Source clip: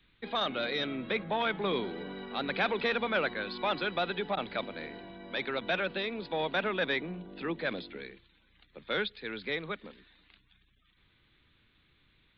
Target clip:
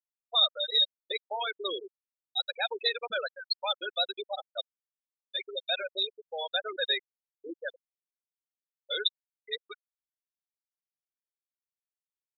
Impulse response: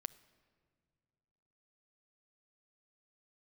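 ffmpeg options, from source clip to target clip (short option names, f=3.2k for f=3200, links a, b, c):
-filter_complex "[0:a]bass=f=250:g=-11,treble=f=4k:g=14[a];[1:a]atrim=start_sample=2205,asetrate=57330,aresample=44100[b];[a][b]afir=irnorm=-1:irlink=0,afftfilt=real='re*gte(hypot(re,im),0.0631)':imag='im*gte(hypot(re,im),0.0631)':win_size=1024:overlap=0.75,aexciter=amount=11:drive=3:freq=4.2k,volume=4.5dB"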